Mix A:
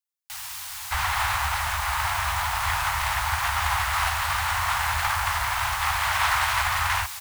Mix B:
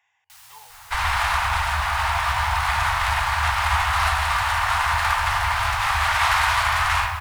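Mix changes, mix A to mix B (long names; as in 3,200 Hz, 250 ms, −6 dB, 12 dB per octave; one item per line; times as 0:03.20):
speech: unmuted
first sound −11.5 dB
reverb: on, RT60 1.8 s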